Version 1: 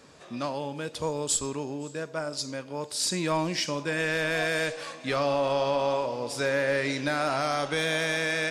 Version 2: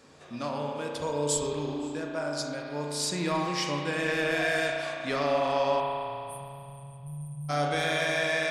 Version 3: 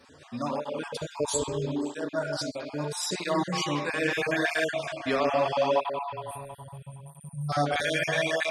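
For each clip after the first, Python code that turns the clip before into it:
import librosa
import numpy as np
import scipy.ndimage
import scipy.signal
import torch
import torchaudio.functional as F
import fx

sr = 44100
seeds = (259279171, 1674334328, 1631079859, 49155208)

y1 = fx.spec_erase(x, sr, start_s=5.8, length_s=1.69, low_hz=200.0, high_hz=8500.0)
y1 = fx.rev_spring(y1, sr, rt60_s=2.7, pass_ms=(34,), chirp_ms=35, drr_db=-0.5)
y1 = y1 * librosa.db_to_amplitude(-3.0)
y2 = fx.spec_dropout(y1, sr, seeds[0], share_pct=31)
y2 = fx.flanger_cancel(y2, sr, hz=0.77, depth_ms=6.7)
y2 = y2 * librosa.db_to_amplitude(5.0)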